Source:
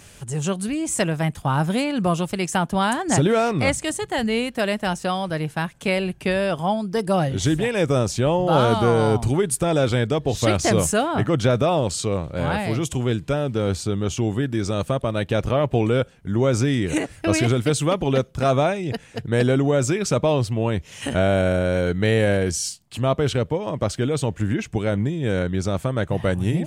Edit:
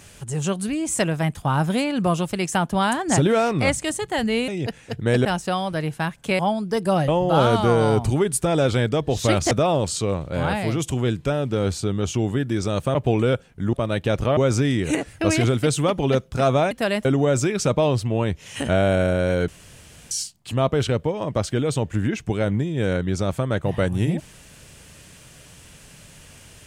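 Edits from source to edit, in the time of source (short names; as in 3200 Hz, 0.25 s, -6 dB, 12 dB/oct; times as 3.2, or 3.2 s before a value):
4.48–4.82 swap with 18.74–19.51
5.96–6.61 cut
7.3–8.26 cut
10.69–11.54 cut
14.98–15.62 move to 16.4
21.94–22.57 room tone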